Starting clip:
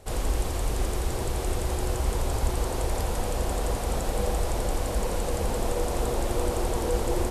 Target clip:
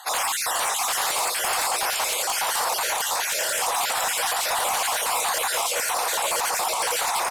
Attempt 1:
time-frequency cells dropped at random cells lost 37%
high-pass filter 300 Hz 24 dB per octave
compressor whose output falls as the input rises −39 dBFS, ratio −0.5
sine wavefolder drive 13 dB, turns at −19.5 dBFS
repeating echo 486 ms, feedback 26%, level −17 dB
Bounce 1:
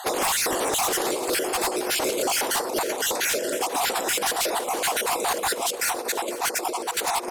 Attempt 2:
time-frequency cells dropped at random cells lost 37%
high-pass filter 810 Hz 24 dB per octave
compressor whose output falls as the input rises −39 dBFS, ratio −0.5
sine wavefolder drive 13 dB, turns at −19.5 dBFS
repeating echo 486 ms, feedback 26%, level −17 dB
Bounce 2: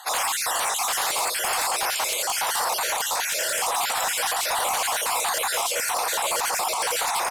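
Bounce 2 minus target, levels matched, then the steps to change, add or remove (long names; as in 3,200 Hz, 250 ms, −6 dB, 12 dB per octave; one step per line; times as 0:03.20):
echo-to-direct −8 dB
change: repeating echo 486 ms, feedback 26%, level −9 dB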